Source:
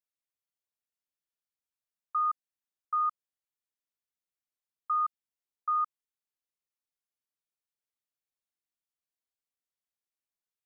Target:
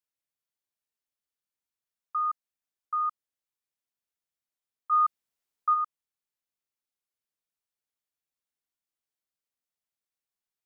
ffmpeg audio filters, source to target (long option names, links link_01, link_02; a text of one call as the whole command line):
ffmpeg -i in.wav -filter_complex "[0:a]asplit=3[link_01][link_02][link_03];[link_01]afade=type=out:start_time=4.91:duration=0.02[link_04];[link_02]acontrast=46,afade=type=in:start_time=4.91:duration=0.02,afade=type=out:start_time=5.73:duration=0.02[link_05];[link_03]afade=type=in:start_time=5.73:duration=0.02[link_06];[link_04][link_05][link_06]amix=inputs=3:normalize=0" out.wav